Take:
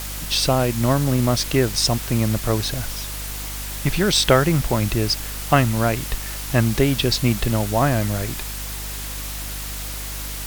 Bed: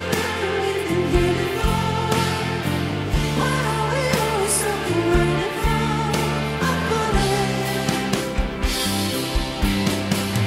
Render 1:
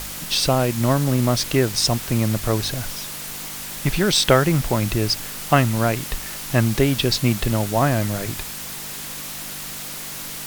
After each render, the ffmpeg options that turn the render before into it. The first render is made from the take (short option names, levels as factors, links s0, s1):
-af "bandreject=f=50:t=h:w=4,bandreject=f=100:t=h:w=4"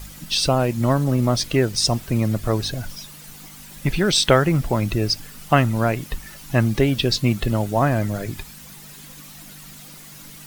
-af "afftdn=nr=12:nf=-32"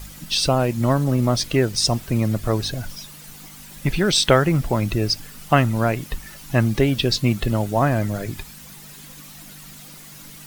-af anull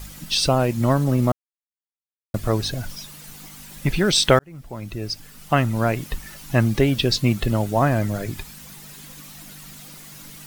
-filter_complex "[0:a]asplit=4[s0][s1][s2][s3];[s0]atrim=end=1.32,asetpts=PTS-STARTPTS,afade=t=out:st=1.316:d=0.004:c=hsin[s4];[s1]atrim=start=1.32:end=2.34,asetpts=PTS-STARTPTS,volume=0[s5];[s2]atrim=start=2.34:end=4.39,asetpts=PTS-STARTPTS,afade=t=in:d=0.004:c=hsin,afade=t=out:st=2.046:d=0.004:c=hsin[s6];[s3]atrim=start=4.39,asetpts=PTS-STARTPTS,afade=t=in:d=1.59[s7];[s4][s5][s6][s7]concat=n=4:v=0:a=1"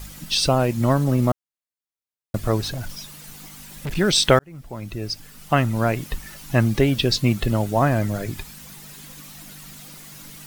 -filter_complex "[0:a]asettb=1/sr,asplit=3[s0][s1][s2];[s0]atrim=end=2.624[s3];[s1]atrim=start=2.62:end=3.97,asetpts=PTS-STARTPTS,afade=t=in:d=0.004:c=qsin,afade=t=out:st=1.346:d=0.004:c=qsin,asoftclip=type=hard:threshold=0.0562[s4];[s2]atrim=start=3.966[s5];[s3][s4]acrossfade=d=0.004:c1=hsin:c2=qsin[s6];[s6][s5]acrossfade=d=0.004:c1=qsin:c2=hsin"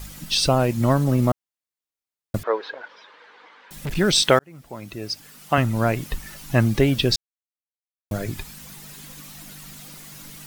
-filter_complex "[0:a]asettb=1/sr,asplit=3[s0][s1][s2];[s0]atrim=end=2.434[s3];[s1]atrim=start=2.43:end=3.71,asetpts=PTS-STARTPTS,afade=t=in:d=0.004:c=qsin,afade=t=out:st=1.276:d=0.004:c=qsin,highpass=f=430:w=0.5412,highpass=f=430:w=1.3066,equalizer=f=470:t=q:w=4:g=7,equalizer=f=680:t=q:w=4:g=-6,equalizer=f=960:t=q:w=4:g=6,equalizer=f=1600:t=q:w=4:g=5,equalizer=f=2700:t=q:w=4:g=-6,lowpass=f=3100:w=0.5412,lowpass=f=3100:w=1.3066[s4];[s2]atrim=start=3.706[s5];[s3][s4]acrossfade=d=0.004:c1=hsin:c2=qsin[s6];[s6][s5]acrossfade=d=0.004:c1=qsin:c2=hsin,asettb=1/sr,asplit=3[s7][s8][s9];[s7]atrim=end=4.224[s10];[s8]atrim=start=4.22:end=5.58,asetpts=PTS-STARTPTS,afade=t=in:d=0.004:c=qsin,afade=t=out:st=1.356:d=0.004:c=qsin,highpass=f=220:p=1[s11];[s9]atrim=start=5.576[s12];[s10][s11]acrossfade=d=0.004:c1=hsin:c2=qsin[s13];[s13][s12]acrossfade=d=0.004:c1=qsin:c2=hsin,asplit=3[s14][s15][s16];[s14]atrim=end=7.16,asetpts=PTS-STARTPTS,afade=t=out:st=7.156:d=0.004:c=hsin[s17];[s15]atrim=start=7.16:end=8.11,asetpts=PTS-STARTPTS,volume=0[s18];[s16]atrim=start=8.11,asetpts=PTS-STARTPTS,afade=t=in:d=0.004:c=hsin[s19];[s17][s18][s19]concat=n=3:v=0:a=1"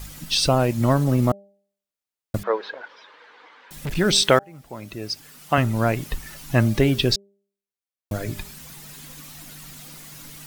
-af "bandreject=f=199.2:t=h:w=4,bandreject=f=398.4:t=h:w=4,bandreject=f=597.6:t=h:w=4,bandreject=f=796.8:t=h:w=4"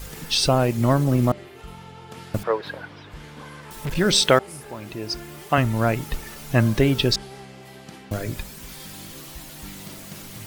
-filter_complex "[1:a]volume=0.0944[s0];[0:a][s0]amix=inputs=2:normalize=0"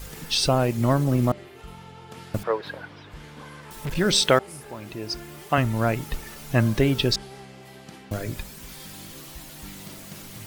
-af "volume=0.794"